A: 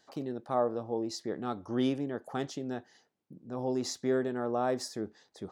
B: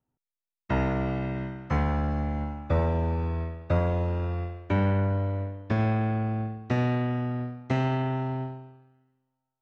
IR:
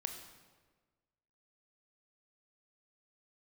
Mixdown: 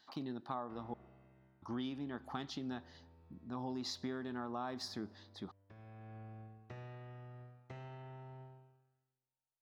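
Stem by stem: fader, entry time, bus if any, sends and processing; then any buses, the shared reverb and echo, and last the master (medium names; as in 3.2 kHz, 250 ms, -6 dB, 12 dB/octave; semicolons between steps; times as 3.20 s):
-5.0 dB, 0.00 s, muted 0.94–1.62 s, send -15.5 dB, graphic EQ 250/500/1000/4000/8000 Hz +4/-11/+8/+11/-12 dB
-17.5 dB, 0.00 s, no send, peaking EQ 250 Hz -14 dB 0.21 oct; compression 2:1, threshold -34 dBFS, peak gain reduction 8 dB; auto duck -13 dB, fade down 1.30 s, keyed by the first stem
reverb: on, RT60 1.4 s, pre-delay 21 ms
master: compression 10:1, threshold -37 dBFS, peak gain reduction 10.5 dB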